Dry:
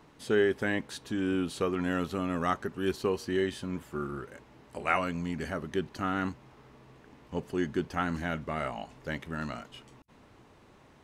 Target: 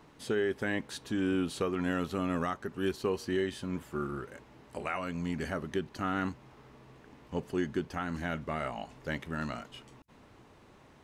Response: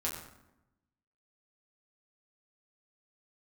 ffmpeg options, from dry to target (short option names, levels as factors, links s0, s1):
-af "alimiter=limit=0.0944:level=0:latency=1:release=321"